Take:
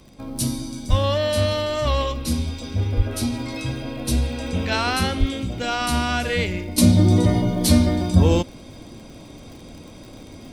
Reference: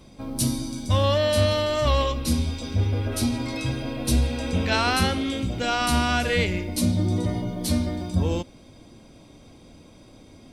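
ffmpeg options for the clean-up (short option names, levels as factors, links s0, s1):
-filter_complex "[0:a]adeclick=t=4,asplit=3[s0][s1][s2];[s0]afade=t=out:st=0.89:d=0.02[s3];[s1]highpass=f=140:w=0.5412,highpass=f=140:w=1.3066,afade=t=in:st=0.89:d=0.02,afade=t=out:st=1.01:d=0.02[s4];[s2]afade=t=in:st=1.01:d=0.02[s5];[s3][s4][s5]amix=inputs=3:normalize=0,asplit=3[s6][s7][s8];[s6]afade=t=out:st=2.96:d=0.02[s9];[s7]highpass=f=140:w=0.5412,highpass=f=140:w=1.3066,afade=t=in:st=2.96:d=0.02,afade=t=out:st=3.08:d=0.02[s10];[s8]afade=t=in:st=3.08:d=0.02[s11];[s9][s10][s11]amix=inputs=3:normalize=0,asplit=3[s12][s13][s14];[s12]afade=t=out:st=5.19:d=0.02[s15];[s13]highpass=f=140:w=0.5412,highpass=f=140:w=1.3066,afade=t=in:st=5.19:d=0.02,afade=t=out:st=5.31:d=0.02[s16];[s14]afade=t=in:st=5.31:d=0.02[s17];[s15][s16][s17]amix=inputs=3:normalize=0,asetnsamples=n=441:p=0,asendcmd='6.78 volume volume -8dB',volume=1"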